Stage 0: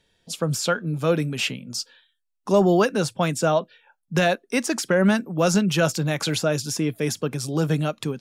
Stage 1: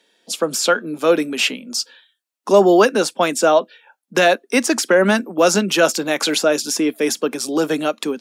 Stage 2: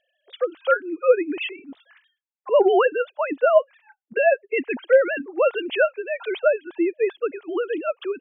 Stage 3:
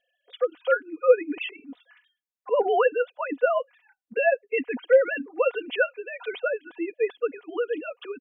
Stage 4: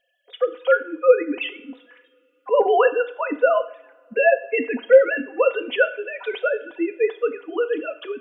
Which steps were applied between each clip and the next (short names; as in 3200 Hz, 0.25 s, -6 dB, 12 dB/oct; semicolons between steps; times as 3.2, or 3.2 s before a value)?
steep high-pass 230 Hz 36 dB/oct; gain +7 dB
sine-wave speech; gain -4.5 dB
comb 4.1 ms, depth 77%; gain -5.5 dB
two-slope reverb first 0.58 s, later 3.5 s, from -27 dB, DRR 10 dB; gain +4.5 dB